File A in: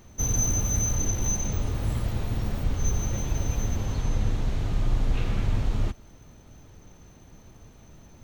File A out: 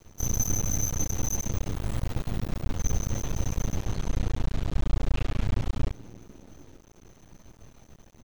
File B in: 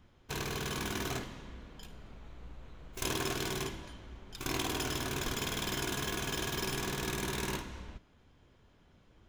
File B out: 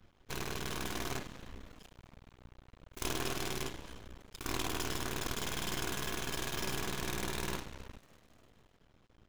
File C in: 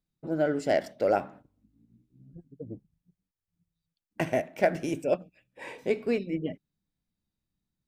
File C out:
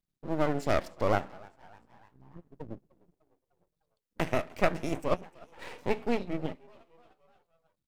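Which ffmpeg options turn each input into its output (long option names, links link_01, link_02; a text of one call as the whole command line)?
ffmpeg -i in.wav -filter_complex "[0:a]asplit=5[link_01][link_02][link_03][link_04][link_05];[link_02]adelay=301,afreqshift=83,volume=-23.5dB[link_06];[link_03]adelay=602,afreqshift=166,volume=-28.4dB[link_07];[link_04]adelay=903,afreqshift=249,volume=-33.3dB[link_08];[link_05]adelay=1204,afreqshift=332,volume=-38.1dB[link_09];[link_01][link_06][link_07][link_08][link_09]amix=inputs=5:normalize=0,aeval=exprs='max(val(0),0)':channel_layout=same,volume=1.5dB" out.wav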